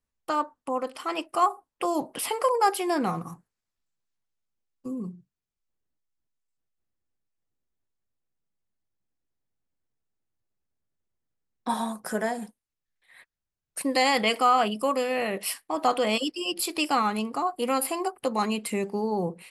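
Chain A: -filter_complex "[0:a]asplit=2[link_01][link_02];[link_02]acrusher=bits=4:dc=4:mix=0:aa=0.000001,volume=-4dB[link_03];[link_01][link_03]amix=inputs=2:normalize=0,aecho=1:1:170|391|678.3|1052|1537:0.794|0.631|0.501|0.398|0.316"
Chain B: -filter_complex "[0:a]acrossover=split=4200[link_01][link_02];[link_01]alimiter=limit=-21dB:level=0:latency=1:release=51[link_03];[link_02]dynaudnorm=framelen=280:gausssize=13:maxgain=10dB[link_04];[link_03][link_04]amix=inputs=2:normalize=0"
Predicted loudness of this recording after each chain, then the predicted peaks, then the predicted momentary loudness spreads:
−20.0, −27.5 LKFS; −2.5, −7.5 dBFS; 17, 12 LU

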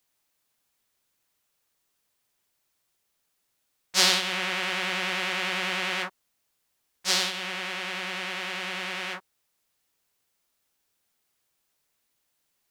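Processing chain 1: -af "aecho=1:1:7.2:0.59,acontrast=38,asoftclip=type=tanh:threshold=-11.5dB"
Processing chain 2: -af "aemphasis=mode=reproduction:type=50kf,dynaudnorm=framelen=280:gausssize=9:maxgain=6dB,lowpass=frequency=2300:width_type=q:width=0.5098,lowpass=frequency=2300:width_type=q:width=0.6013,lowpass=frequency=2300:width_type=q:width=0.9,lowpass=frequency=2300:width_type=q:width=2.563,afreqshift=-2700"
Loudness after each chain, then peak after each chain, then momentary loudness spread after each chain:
−23.0, −28.5 LKFS; −11.5, −11.5 dBFS; 7, 6 LU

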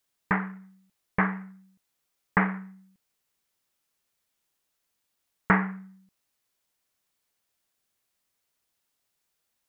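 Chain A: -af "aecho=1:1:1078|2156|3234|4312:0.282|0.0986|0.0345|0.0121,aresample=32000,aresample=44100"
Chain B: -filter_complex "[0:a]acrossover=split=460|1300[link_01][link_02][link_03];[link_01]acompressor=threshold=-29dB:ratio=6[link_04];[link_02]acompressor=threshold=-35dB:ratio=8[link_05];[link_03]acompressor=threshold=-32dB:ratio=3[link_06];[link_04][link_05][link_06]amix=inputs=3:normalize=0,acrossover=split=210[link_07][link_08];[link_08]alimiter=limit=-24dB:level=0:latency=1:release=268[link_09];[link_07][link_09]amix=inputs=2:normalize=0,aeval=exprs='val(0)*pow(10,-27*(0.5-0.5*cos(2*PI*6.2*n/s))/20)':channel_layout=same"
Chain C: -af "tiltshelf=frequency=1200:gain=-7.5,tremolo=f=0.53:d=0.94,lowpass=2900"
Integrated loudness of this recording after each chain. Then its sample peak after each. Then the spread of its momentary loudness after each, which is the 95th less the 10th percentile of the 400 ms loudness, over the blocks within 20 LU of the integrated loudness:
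−30.0, −44.5, −31.5 LKFS; −5.0, −21.0, −7.5 dBFS; 22, 16, 21 LU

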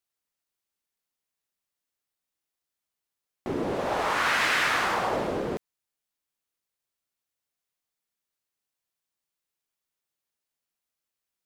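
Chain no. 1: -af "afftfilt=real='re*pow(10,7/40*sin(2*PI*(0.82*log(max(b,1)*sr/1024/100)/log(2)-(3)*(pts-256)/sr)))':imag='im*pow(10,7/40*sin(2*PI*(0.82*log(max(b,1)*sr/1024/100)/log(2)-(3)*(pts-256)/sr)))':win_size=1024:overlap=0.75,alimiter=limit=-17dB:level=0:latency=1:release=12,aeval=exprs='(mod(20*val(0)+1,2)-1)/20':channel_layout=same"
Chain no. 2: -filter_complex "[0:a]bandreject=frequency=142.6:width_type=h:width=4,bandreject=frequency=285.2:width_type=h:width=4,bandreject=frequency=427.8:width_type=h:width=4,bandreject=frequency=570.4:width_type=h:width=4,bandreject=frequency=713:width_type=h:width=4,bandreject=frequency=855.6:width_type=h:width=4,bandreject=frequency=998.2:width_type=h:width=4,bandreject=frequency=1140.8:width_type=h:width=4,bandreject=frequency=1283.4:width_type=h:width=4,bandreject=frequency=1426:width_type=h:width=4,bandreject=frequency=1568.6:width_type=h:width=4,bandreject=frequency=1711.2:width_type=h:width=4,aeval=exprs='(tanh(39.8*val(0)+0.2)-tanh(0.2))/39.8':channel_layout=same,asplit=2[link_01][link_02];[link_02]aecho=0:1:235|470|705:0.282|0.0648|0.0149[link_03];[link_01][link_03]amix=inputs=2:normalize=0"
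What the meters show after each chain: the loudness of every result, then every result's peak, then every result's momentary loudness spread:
−29.5, −34.0 LKFS; −26.0, −28.0 dBFS; 6, 12 LU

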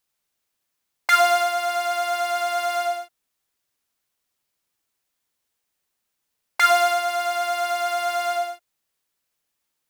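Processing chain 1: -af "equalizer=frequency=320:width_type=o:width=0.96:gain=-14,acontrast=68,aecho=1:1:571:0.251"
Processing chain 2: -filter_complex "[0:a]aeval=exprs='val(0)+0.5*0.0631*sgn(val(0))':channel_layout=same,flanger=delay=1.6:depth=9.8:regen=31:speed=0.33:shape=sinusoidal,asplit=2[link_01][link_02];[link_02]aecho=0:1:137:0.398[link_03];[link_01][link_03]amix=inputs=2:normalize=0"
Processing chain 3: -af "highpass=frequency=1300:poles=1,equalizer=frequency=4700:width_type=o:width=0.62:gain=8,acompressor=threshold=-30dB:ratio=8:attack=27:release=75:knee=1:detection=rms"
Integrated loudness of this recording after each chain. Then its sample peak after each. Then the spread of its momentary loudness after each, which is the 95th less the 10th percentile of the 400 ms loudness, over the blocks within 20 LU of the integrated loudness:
−17.0, −25.5, −30.5 LKFS; −2.5, −6.0, −13.0 dBFS; 19, 11, 8 LU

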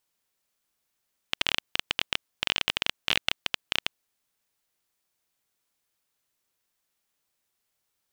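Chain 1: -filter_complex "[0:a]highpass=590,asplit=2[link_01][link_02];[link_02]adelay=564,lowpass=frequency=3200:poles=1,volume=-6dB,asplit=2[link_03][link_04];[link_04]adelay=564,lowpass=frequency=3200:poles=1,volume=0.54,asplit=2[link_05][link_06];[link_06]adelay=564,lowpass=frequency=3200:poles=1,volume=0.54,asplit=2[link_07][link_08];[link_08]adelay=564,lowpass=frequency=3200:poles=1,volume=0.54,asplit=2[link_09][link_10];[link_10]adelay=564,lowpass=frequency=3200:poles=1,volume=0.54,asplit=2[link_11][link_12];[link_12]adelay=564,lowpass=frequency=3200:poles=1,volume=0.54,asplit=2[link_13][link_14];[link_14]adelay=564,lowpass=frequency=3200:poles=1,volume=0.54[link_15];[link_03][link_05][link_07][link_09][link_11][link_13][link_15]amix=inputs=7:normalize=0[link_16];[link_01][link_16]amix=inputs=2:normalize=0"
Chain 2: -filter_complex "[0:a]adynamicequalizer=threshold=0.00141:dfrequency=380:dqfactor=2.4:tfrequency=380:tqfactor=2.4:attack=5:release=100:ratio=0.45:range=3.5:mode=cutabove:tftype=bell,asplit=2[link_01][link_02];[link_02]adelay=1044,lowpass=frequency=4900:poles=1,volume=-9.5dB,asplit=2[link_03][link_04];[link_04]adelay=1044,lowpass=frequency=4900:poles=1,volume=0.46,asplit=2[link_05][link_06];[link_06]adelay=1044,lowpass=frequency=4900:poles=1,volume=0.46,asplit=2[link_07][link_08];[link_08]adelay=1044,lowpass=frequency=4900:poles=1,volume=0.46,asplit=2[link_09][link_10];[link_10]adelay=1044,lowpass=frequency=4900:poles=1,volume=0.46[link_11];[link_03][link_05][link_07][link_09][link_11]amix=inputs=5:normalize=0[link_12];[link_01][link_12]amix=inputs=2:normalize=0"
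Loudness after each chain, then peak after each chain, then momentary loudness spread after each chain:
−29.0, −29.5 LKFS; −3.5, −4.5 dBFS; 18, 20 LU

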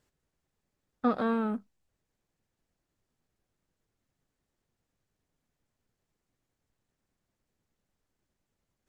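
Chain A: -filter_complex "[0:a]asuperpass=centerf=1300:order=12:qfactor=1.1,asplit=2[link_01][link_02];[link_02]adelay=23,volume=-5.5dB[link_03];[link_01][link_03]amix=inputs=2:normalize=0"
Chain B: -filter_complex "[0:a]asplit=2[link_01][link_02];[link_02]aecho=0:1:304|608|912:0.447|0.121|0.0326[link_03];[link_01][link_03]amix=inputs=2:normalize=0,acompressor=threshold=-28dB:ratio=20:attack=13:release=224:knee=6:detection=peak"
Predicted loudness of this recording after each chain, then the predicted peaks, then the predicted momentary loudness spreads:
−36.5, −35.5 LKFS; −23.0, −21.5 dBFS; 11, 15 LU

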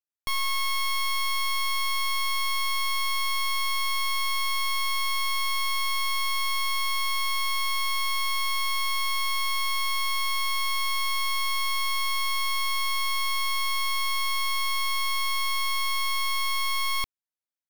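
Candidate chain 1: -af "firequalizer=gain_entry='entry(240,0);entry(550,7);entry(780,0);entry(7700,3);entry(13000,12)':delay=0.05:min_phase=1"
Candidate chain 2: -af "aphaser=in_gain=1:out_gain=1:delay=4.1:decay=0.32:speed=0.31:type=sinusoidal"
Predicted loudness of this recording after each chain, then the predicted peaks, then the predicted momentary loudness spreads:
−22.5, −25.5 LKFS; −14.5, −22.0 dBFS; 0, 1 LU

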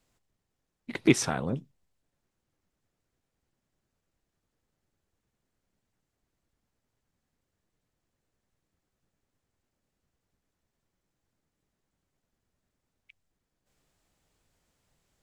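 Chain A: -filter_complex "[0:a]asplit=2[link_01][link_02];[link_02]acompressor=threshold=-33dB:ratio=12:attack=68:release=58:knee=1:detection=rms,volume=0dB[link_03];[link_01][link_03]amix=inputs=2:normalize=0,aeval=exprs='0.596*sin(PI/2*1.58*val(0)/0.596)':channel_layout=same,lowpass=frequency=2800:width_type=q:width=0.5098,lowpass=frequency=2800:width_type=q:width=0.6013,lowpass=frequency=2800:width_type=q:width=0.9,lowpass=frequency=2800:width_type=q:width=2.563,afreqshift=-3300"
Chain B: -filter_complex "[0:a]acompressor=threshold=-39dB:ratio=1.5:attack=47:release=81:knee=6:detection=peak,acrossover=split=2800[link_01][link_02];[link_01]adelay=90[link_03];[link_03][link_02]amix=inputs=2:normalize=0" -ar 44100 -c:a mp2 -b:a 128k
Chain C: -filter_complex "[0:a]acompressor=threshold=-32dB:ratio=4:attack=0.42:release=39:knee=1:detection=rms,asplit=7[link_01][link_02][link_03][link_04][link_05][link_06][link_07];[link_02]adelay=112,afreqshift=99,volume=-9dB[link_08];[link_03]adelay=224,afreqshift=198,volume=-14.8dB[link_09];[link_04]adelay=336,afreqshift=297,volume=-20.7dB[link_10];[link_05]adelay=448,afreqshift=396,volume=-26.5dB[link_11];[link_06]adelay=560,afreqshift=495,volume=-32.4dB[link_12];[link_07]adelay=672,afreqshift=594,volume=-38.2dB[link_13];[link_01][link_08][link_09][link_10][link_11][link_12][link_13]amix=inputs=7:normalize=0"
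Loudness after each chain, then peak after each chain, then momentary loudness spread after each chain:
−16.5, −33.5, −38.5 LKFS; −1.5, −13.0, −24.5 dBFS; 12, 12, 15 LU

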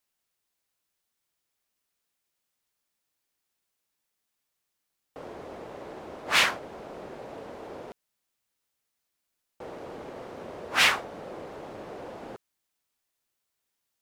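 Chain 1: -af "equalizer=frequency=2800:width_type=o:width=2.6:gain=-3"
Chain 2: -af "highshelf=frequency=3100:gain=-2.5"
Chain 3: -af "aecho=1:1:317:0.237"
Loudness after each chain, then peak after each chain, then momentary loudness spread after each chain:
−32.5, −28.5, −26.0 LKFS; −10.0, −8.5, −8.0 dBFS; 20, 21, 20 LU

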